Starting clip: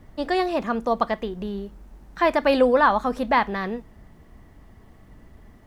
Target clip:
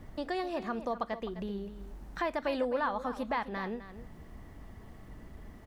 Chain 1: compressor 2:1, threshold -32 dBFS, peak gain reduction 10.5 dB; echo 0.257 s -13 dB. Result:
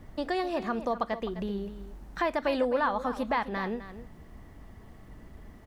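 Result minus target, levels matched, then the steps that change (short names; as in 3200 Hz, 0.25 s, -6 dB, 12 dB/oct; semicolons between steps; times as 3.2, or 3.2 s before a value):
compressor: peak gain reduction -4 dB
change: compressor 2:1, threshold -40.5 dBFS, peak gain reduction 15 dB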